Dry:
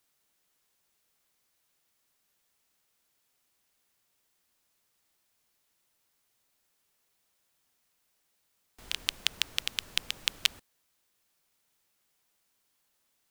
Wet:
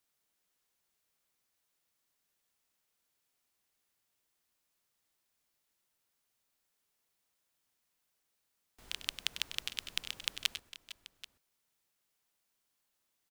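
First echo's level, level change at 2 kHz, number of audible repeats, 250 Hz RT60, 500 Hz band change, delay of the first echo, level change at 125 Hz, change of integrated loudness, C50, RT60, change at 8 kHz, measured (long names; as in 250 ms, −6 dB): −11.0 dB, −6.0 dB, 3, no reverb audible, −6.0 dB, 98 ms, −6.0 dB, −6.5 dB, no reverb audible, no reverb audible, −6.0 dB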